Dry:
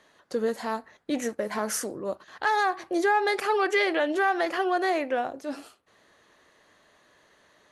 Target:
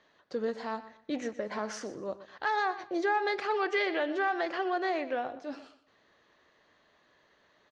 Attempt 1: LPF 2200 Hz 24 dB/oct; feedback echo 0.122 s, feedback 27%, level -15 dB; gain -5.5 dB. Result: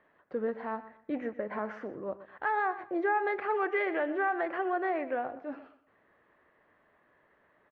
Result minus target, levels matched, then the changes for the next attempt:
4000 Hz band -14.5 dB
change: LPF 5500 Hz 24 dB/oct

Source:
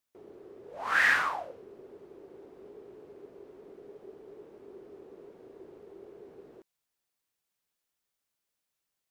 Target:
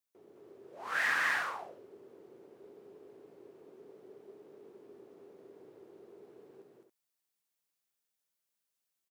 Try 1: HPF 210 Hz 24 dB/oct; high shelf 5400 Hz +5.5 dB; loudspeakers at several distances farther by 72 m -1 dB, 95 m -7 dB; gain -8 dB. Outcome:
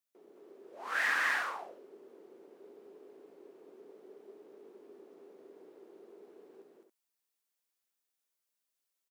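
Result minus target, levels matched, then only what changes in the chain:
125 Hz band -9.5 dB
change: HPF 97 Hz 24 dB/oct

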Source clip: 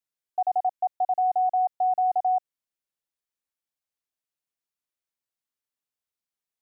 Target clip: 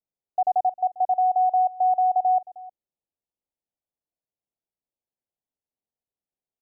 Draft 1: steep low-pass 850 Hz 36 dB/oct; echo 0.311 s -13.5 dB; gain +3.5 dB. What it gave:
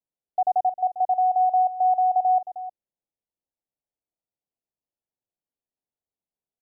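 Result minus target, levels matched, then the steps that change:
echo-to-direct +6.5 dB
change: echo 0.311 s -20 dB

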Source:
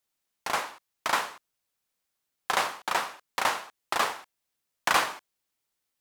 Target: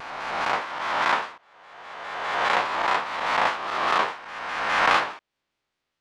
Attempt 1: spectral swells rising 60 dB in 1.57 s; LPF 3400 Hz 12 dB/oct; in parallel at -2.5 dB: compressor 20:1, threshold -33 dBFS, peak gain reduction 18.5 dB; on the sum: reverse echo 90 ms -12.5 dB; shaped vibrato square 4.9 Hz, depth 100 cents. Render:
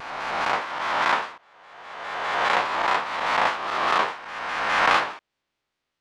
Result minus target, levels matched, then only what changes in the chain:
compressor: peak gain reduction -7.5 dB
change: compressor 20:1, threshold -41 dBFS, peak gain reduction 26 dB

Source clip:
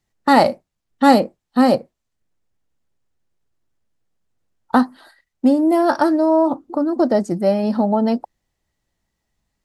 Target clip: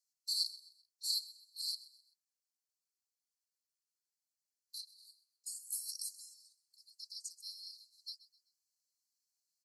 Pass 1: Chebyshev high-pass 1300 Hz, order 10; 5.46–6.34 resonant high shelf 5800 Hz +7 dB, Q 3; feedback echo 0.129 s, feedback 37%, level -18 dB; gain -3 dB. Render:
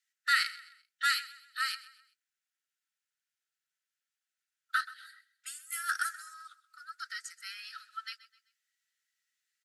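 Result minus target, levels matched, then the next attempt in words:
4000 Hz band -5.0 dB
Chebyshev high-pass 4100 Hz, order 10; 5.46–6.34 resonant high shelf 5800 Hz +7 dB, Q 3; feedback echo 0.129 s, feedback 37%, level -18 dB; gain -3 dB

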